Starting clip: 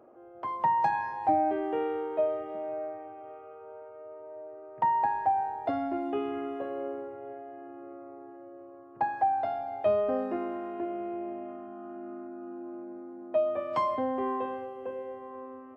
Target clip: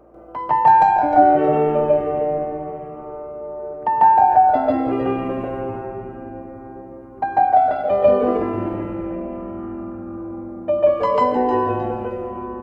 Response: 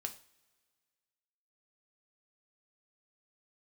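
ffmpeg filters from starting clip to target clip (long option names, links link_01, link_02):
-filter_complex "[0:a]atempo=1.3,aeval=exprs='val(0)+0.000562*(sin(2*PI*60*n/s)+sin(2*PI*2*60*n/s)/2+sin(2*PI*3*60*n/s)/3+sin(2*PI*4*60*n/s)/4+sin(2*PI*5*60*n/s)/5)':channel_layout=same,asplit=5[link_01][link_02][link_03][link_04][link_05];[link_02]adelay=298,afreqshift=-150,volume=-9.5dB[link_06];[link_03]adelay=596,afreqshift=-300,volume=-18.1dB[link_07];[link_04]adelay=894,afreqshift=-450,volume=-26.8dB[link_08];[link_05]adelay=1192,afreqshift=-600,volume=-35.4dB[link_09];[link_01][link_06][link_07][link_08][link_09]amix=inputs=5:normalize=0,asplit=2[link_10][link_11];[1:a]atrim=start_sample=2205,adelay=139[link_12];[link_11][link_12]afir=irnorm=-1:irlink=0,volume=5.5dB[link_13];[link_10][link_13]amix=inputs=2:normalize=0,asetrate=42336,aresample=44100,volume=6.5dB"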